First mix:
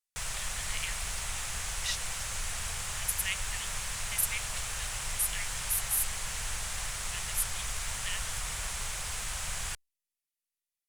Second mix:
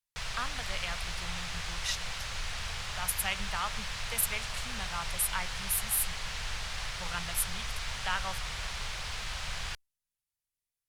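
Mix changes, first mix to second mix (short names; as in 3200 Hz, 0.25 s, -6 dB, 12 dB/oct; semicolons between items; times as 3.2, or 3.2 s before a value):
speech: remove brick-wall FIR high-pass 1700 Hz; background: add resonant high shelf 6200 Hz -11 dB, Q 1.5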